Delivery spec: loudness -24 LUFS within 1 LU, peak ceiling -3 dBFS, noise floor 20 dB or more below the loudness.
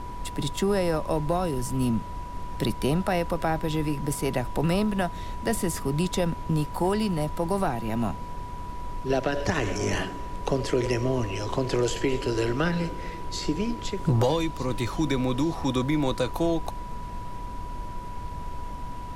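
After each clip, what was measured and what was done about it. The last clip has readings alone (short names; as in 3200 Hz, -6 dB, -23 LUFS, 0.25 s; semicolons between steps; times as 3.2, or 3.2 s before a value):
steady tone 980 Hz; tone level -38 dBFS; noise floor -37 dBFS; noise floor target -48 dBFS; loudness -28.0 LUFS; peak -11.5 dBFS; loudness target -24.0 LUFS
-> notch 980 Hz, Q 30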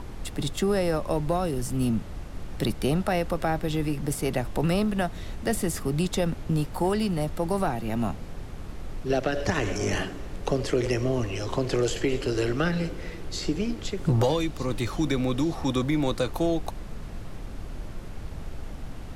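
steady tone none; noise floor -38 dBFS; noise floor target -48 dBFS
-> noise print and reduce 10 dB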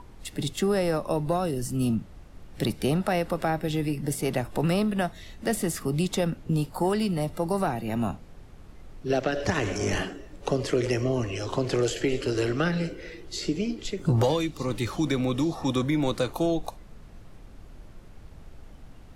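noise floor -47 dBFS; noise floor target -48 dBFS
-> noise print and reduce 6 dB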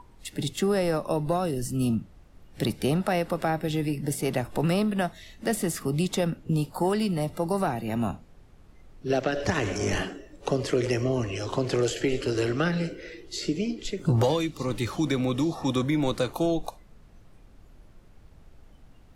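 noise floor -53 dBFS; loudness -27.5 LUFS; peak -12.5 dBFS; loudness target -24.0 LUFS
-> gain +3.5 dB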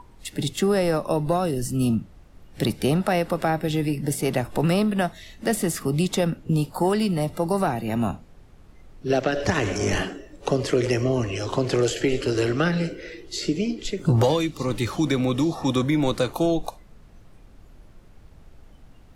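loudness -24.0 LUFS; peak -9.0 dBFS; noise floor -49 dBFS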